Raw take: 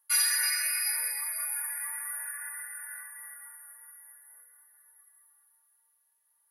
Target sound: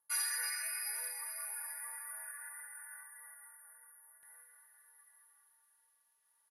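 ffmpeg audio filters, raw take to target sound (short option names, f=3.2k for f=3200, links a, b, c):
-af "asetnsamples=n=441:p=0,asendcmd='4.23 equalizer g 2.5',equalizer=f=3.5k:w=0.42:g=-13,lowpass=9.2k,aecho=1:1:837:0.168"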